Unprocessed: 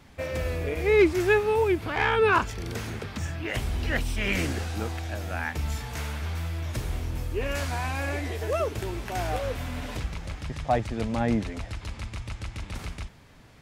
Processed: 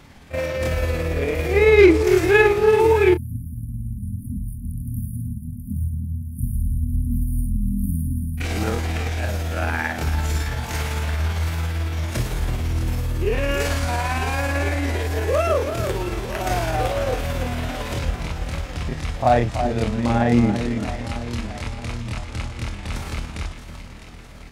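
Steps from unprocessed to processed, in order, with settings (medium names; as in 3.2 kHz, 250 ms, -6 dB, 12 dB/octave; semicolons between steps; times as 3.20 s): echo whose repeats swap between lows and highs 178 ms, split 1.5 kHz, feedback 73%, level -8 dB; spectral selection erased 1.75–4.67 s, 270–9200 Hz; granular stretch 1.8×, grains 112 ms; trim +7.5 dB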